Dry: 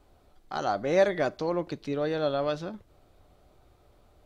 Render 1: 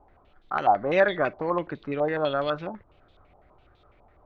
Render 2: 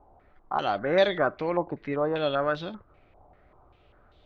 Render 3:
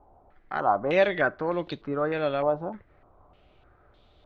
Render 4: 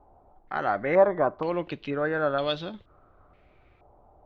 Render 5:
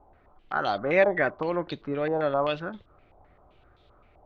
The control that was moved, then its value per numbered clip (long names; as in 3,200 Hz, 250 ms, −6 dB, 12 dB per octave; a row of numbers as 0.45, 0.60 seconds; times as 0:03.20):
low-pass on a step sequencer, speed: 12, 5.1, 3.3, 2.1, 7.7 Hertz